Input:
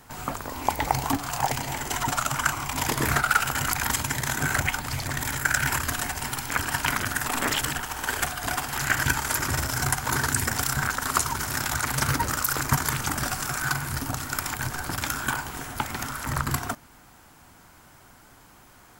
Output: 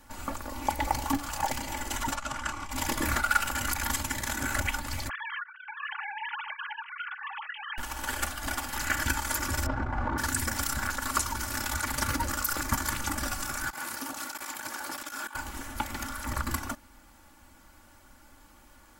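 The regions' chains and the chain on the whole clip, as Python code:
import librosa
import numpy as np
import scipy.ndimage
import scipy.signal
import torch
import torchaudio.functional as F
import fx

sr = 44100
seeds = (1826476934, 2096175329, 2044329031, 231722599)

y = fx.chain(x, sr, fx.lowpass(hz=9200.0, slope=12),
    fx.high_shelf(hz=6300.0, db=-5.5),
    fx.transformer_sat(knee_hz=970.0), at=(2.15, 2.71))
y = fx.chain(y, sr, fx.sine_speech(),
    fx.highpass(hz=1000.0, slope=12),
    fx.over_compress(threshold_db=-35.0, ratio=-1.0), at=(5.09, 7.78))
y = fx.chain(y, sr, fx.cvsd(bps=64000),
    fx.lowpass(hz=1100.0, slope=12),
    fx.env_flatten(amount_pct=100), at=(9.66, 10.18))
y = fx.chain(y, sr, fx.highpass(hz=350.0, slope=12),
    fx.over_compress(threshold_db=-33.0, ratio=-0.5), at=(13.7, 15.35))
y = fx.low_shelf(y, sr, hz=64.0, db=8.5)
y = y + 0.75 * np.pad(y, (int(3.5 * sr / 1000.0), 0))[:len(y)]
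y = y * librosa.db_to_amplitude(-6.5)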